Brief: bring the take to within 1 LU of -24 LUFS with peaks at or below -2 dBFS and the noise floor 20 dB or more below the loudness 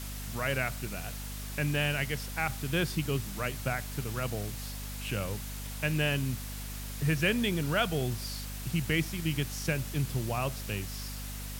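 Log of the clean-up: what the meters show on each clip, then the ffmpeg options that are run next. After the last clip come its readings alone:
hum 50 Hz; harmonics up to 250 Hz; hum level -38 dBFS; noise floor -39 dBFS; noise floor target -53 dBFS; loudness -32.5 LUFS; peak -15.0 dBFS; loudness target -24.0 LUFS
-> -af "bandreject=f=50:t=h:w=6,bandreject=f=100:t=h:w=6,bandreject=f=150:t=h:w=6,bandreject=f=200:t=h:w=6,bandreject=f=250:t=h:w=6"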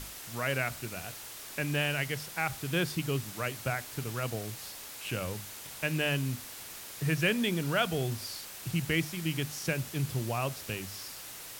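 hum none; noise floor -45 dBFS; noise floor target -53 dBFS
-> -af "afftdn=nr=8:nf=-45"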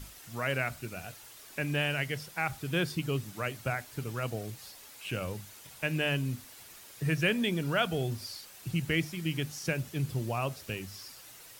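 noise floor -52 dBFS; noise floor target -53 dBFS
-> -af "afftdn=nr=6:nf=-52"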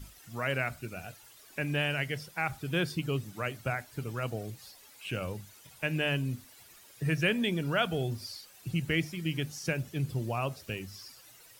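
noise floor -56 dBFS; loudness -33.0 LUFS; peak -15.0 dBFS; loudness target -24.0 LUFS
-> -af "volume=9dB"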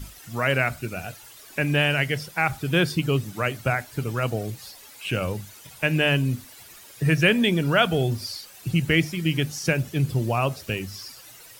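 loudness -24.0 LUFS; peak -6.0 dBFS; noise floor -47 dBFS

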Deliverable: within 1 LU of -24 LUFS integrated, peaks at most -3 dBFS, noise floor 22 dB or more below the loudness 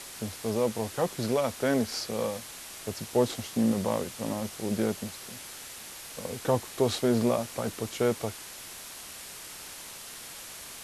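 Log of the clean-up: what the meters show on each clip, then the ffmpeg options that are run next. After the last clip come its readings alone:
noise floor -44 dBFS; noise floor target -53 dBFS; loudness -31.0 LUFS; peak -11.0 dBFS; loudness target -24.0 LUFS
-> -af "afftdn=nr=9:nf=-44"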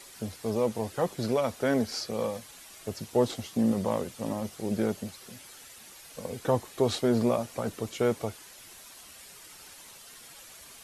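noise floor -50 dBFS; noise floor target -52 dBFS
-> -af "afftdn=nr=6:nf=-50"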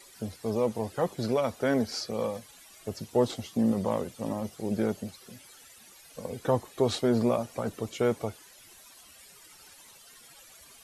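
noise floor -54 dBFS; loudness -30.0 LUFS; peak -11.5 dBFS; loudness target -24.0 LUFS
-> -af "volume=6dB"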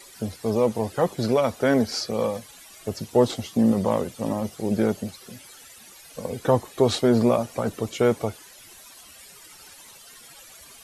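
loudness -24.0 LUFS; peak -5.5 dBFS; noise floor -48 dBFS

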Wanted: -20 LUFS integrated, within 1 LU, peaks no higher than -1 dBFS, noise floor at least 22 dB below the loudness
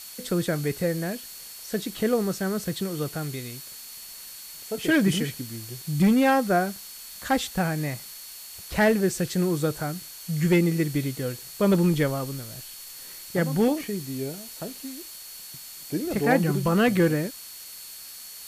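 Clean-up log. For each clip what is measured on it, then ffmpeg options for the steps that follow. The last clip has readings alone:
steady tone 4400 Hz; tone level -47 dBFS; noise floor -42 dBFS; noise floor target -48 dBFS; loudness -25.5 LUFS; peak -9.0 dBFS; loudness target -20.0 LUFS
-> -af "bandreject=f=4.4k:w=30"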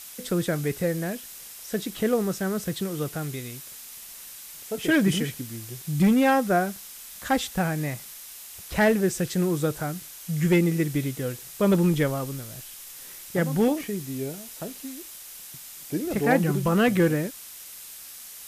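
steady tone none; noise floor -43 dBFS; noise floor target -48 dBFS
-> -af "afftdn=nr=6:nf=-43"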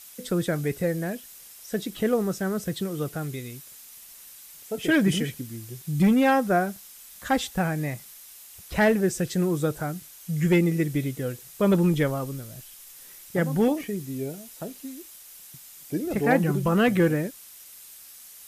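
noise floor -47 dBFS; noise floor target -48 dBFS
-> -af "afftdn=nr=6:nf=-47"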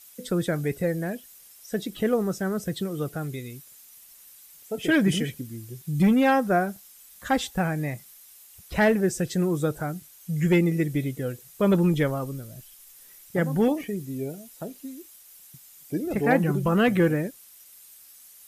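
noise floor -51 dBFS; loudness -25.5 LUFS; peak -9.0 dBFS; loudness target -20.0 LUFS
-> -af "volume=5.5dB"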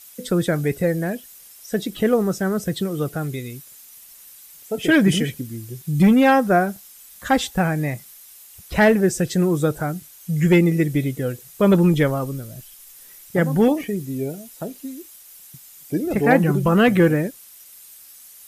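loudness -20.0 LUFS; peak -3.5 dBFS; noise floor -45 dBFS

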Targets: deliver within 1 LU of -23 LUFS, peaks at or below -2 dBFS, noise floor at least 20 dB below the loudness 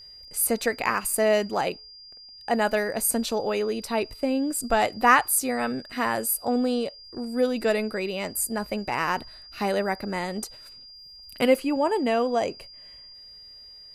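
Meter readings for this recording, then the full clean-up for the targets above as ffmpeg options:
steady tone 4800 Hz; tone level -44 dBFS; loudness -25.0 LUFS; peak -5.0 dBFS; loudness target -23.0 LUFS
-> -af "bandreject=f=4.8k:w=30"
-af "volume=2dB"

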